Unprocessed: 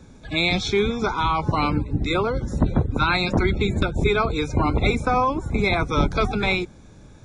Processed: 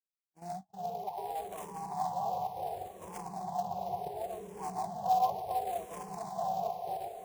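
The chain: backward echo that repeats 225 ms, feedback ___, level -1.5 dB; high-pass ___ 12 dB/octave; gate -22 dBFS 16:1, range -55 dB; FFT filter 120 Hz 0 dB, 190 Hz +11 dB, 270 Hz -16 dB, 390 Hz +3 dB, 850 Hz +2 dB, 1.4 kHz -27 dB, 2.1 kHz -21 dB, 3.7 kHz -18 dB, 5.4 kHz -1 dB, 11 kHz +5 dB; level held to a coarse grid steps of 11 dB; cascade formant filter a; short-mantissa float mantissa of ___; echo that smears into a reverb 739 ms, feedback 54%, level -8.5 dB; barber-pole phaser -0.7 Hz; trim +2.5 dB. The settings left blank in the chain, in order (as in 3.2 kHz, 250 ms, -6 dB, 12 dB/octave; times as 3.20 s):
75%, 110 Hz, 2-bit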